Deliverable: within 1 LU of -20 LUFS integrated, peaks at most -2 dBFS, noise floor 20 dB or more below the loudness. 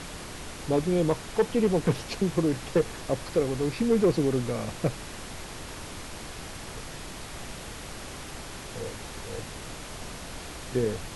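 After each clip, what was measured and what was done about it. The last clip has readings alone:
clipped samples 0.4%; clipping level -15.5 dBFS; noise floor -41 dBFS; noise floor target -50 dBFS; loudness -30.0 LUFS; peak level -15.5 dBFS; loudness target -20.0 LUFS
-> clip repair -15.5 dBFS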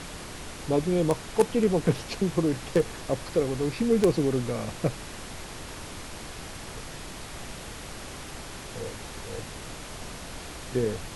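clipped samples 0.0%; noise floor -41 dBFS; noise floor target -50 dBFS
-> noise print and reduce 9 dB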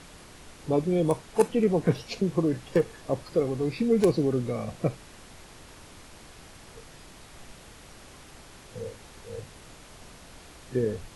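noise floor -50 dBFS; loudness -27.0 LUFS; peak level -7.5 dBFS; loudness target -20.0 LUFS
-> trim +7 dB; peak limiter -2 dBFS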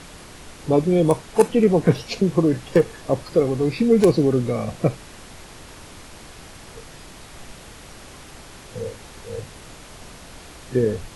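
loudness -20.0 LUFS; peak level -2.0 dBFS; noise floor -43 dBFS

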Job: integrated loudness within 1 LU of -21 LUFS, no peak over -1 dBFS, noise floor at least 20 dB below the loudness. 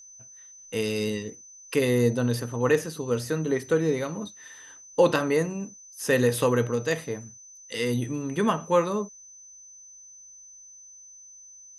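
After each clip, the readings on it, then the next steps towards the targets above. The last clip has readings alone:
steady tone 6.1 kHz; tone level -46 dBFS; loudness -26.0 LUFS; peak level -8.5 dBFS; loudness target -21.0 LUFS
-> band-stop 6.1 kHz, Q 30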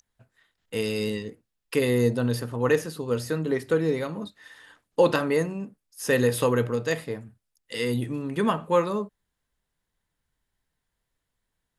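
steady tone not found; loudness -26.0 LUFS; peak level -8.5 dBFS; loudness target -21.0 LUFS
-> trim +5 dB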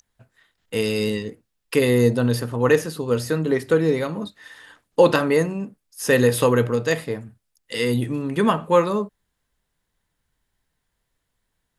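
loudness -21.0 LUFS; peak level -3.5 dBFS; noise floor -76 dBFS

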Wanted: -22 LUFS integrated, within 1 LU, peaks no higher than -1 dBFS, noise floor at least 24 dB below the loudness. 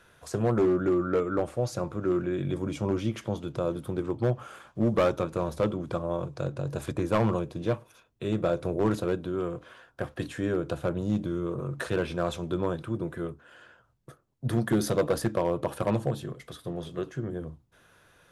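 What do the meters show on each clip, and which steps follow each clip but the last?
clipped samples 0.8%; clipping level -18.0 dBFS; loudness -29.5 LUFS; peak level -18.0 dBFS; loudness target -22.0 LUFS
-> clip repair -18 dBFS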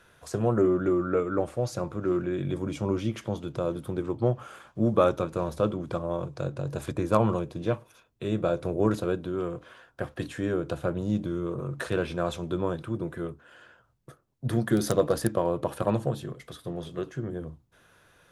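clipped samples 0.0%; loudness -29.0 LUFS; peak level -9.0 dBFS; loudness target -22.0 LUFS
-> trim +7 dB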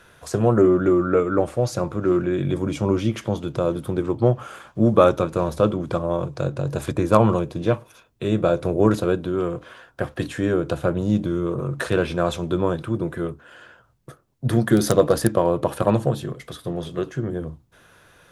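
loudness -22.0 LUFS; peak level -2.0 dBFS; noise floor -56 dBFS

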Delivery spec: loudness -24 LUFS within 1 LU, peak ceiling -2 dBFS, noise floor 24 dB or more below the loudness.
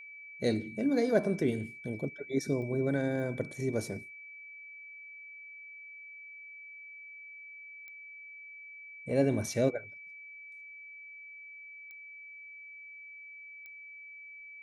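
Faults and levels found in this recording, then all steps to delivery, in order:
clicks found 5; steady tone 2.3 kHz; tone level -46 dBFS; loudness -32.0 LUFS; peak level -13.5 dBFS; loudness target -24.0 LUFS
-> de-click; band-stop 2.3 kHz, Q 30; trim +8 dB

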